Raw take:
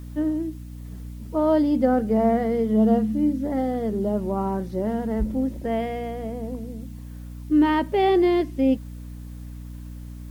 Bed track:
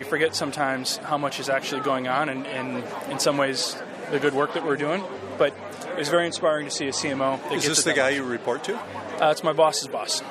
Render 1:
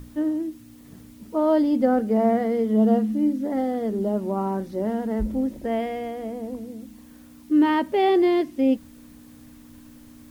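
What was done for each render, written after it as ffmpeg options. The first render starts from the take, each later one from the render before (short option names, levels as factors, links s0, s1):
-af "bandreject=f=60:t=h:w=6,bandreject=f=120:t=h:w=6,bandreject=f=180:t=h:w=6"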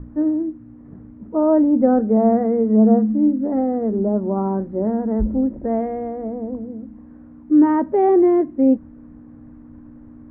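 -af "lowpass=f=1700:w=0.5412,lowpass=f=1700:w=1.3066,tiltshelf=f=1200:g=6"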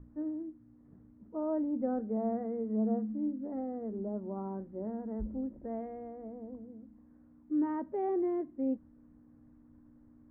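-af "volume=0.133"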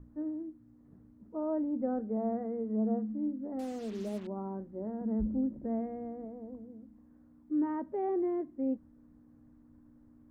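-filter_complex "[0:a]asettb=1/sr,asplit=3[s0][s1][s2];[s0]atrim=end=3.594[s3];[s1]atrim=start=3.59:end=4.27,asetpts=PTS-STARTPTS,afade=t=in:d=0.004:c=qsin,afade=t=out:st=0.676:d=0.004:c=qsin,acrusher=bits=7:mix=0:aa=0.5[s4];[s2]atrim=start=4.266[s5];[s3][s4]acrossfade=d=0.004:c1=hsin:c2=qsin[s6];[s6][s5]acrossfade=d=0.004:c1=qsin:c2=hsin,asettb=1/sr,asplit=3[s7][s8][s9];[s7]atrim=end=5.014[s10];[s8]atrim=start=5.01:end=6.25,asetpts=PTS-STARTPTS,afade=t=in:d=0.004:c=qsin,afade=t=out:st=1.236:d=0.004:c=qsin,equalizer=f=180:t=o:w=1.5:g=8.5[s11];[s9]atrim=start=6.246[s12];[s10][s11]acrossfade=d=0.004:c1=hsin:c2=qsin[s13];[s13][s12]acrossfade=d=0.004:c1=qsin:c2=hsin"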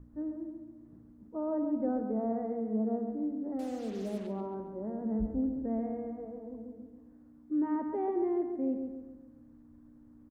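-filter_complex "[0:a]asplit=2[s0][s1];[s1]adelay=137,lowpass=f=3400:p=1,volume=0.501,asplit=2[s2][s3];[s3]adelay=137,lowpass=f=3400:p=1,volume=0.48,asplit=2[s4][s5];[s5]adelay=137,lowpass=f=3400:p=1,volume=0.48,asplit=2[s6][s7];[s7]adelay=137,lowpass=f=3400:p=1,volume=0.48,asplit=2[s8][s9];[s9]adelay=137,lowpass=f=3400:p=1,volume=0.48,asplit=2[s10][s11];[s11]adelay=137,lowpass=f=3400:p=1,volume=0.48[s12];[s0][s2][s4][s6][s8][s10][s12]amix=inputs=7:normalize=0"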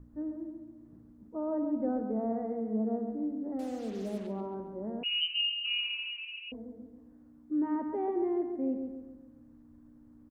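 -filter_complex "[0:a]asettb=1/sr,asplit=3[s0][s1][s2];[s0]atrim=end=5.034[s3];[s1]atrim=start=5.03:end=6.52,asetpts=PTS-STARTPTS,afade=t=in:d=0.004:c=qsin,afade=t=out:st=1.486:d=0.004:c=qsin,lowpass=f=2600:t=q:w=0.5098,lowpass=f=2600:t=q:w=0.6013,lowpass=f=2600:t=q:w=0.9,lowpass=f=2600:t=q:w=2.563,afreqshift=-3100[s4];[s2]atrim=start=6.516[s5];[s3][s4]acrossfade=d=0.004:c1=hsin:c2=qsin[s6];[s6][s5]acrossfade=d=0.004:c1=qsin:c2=hsin"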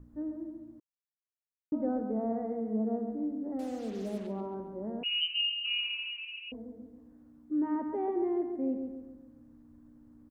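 -filter_complex "[0:a]asplit=3[s0][s1][s2];[s0]atrim=end=0.8,asetpts=PTS-STARTPTS,afade=t=out:st=0.796:d=0.004:c=hsin[s3];[s1]atrim=start=0.8:end=1.72,asetpts=PTS-STARTPTS,volume=0[s4];[s2]atrim=start=1.72,asetpts=PTS-STARTPTS,afade=t=in:d=0.004:c=hsin[s5];[s3][s4][s5]concat=n=3:v=0:a=1"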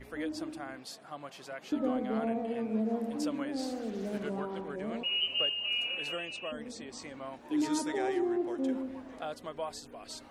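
-filter_complex "[1:a]volume=0.112[s0];[0:a][s0]amix=inputs=2:normalize=0"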